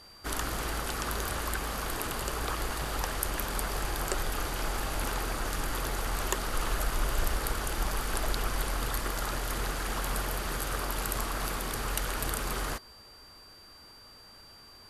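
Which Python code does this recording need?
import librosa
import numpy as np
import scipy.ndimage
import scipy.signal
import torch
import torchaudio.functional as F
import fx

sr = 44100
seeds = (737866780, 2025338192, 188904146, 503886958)

y = fx.fix_declip(x, sr, threshold_db=-11.5)
y = fx.notch(y, sr, hz=4700.0, q=30.0)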